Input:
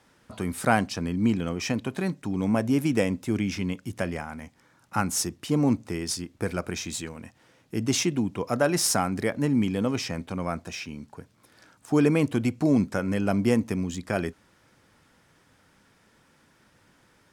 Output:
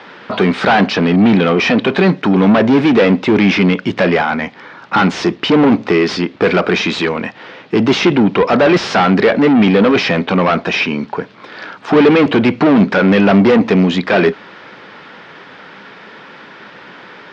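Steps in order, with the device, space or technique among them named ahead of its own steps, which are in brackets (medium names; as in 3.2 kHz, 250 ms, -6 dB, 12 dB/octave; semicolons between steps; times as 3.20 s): overdrive pedal into a guitar cabinet (overdrive pedal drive 33 dB, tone 4 kHz, clips at -5 dBFS; cabinet simulation 77–4100 Hz, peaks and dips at 90 Hz -5 dB, 190 Hz +5 dB, 410 Hz +5 dB); trim +2 dB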